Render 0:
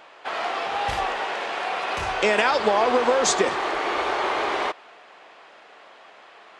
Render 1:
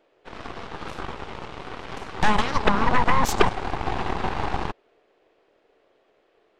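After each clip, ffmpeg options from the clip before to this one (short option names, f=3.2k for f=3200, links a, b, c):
-af "highpass=260,lowshelf=f=620:t=q:w=1.5:g=13,aeval=exprs='1.58*(cos(1*acos(clip(val(0)/1.58,-1,1)))-cos(1*PI/2))+0.708*(cos(3*acos(clip(val(0)/1.58,-1,1)))-cos(3*PI/2))+0.501*(cos(8*acos(clip(val(0)/1.58,-1,1)))-cos(8*PI/2))':c=same,volume=-10.5dB"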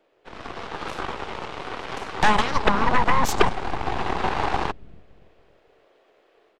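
-filter_complex "[0:a]acrossover=split=310[a][b];[a]aecho=1:1:283|566|849|1132:0.188|0.0735|0.0287|0.0112[c];[b]dynaudnorm=f=360:g=3:m=6dB[d];[c][d]amix=inputs=2:normalize=0,volume=-1.5dB"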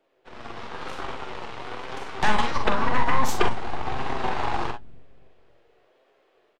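-filter_complex "[0:a]flanger=delay=7.3:depth=1.4:regen=60:speed=0.98:shape=triangular,asplit=2[a][b];[b]aecho=0:1:43|61:0.447|0.237[c];[a][c]amix=inputs=2:normalize=0"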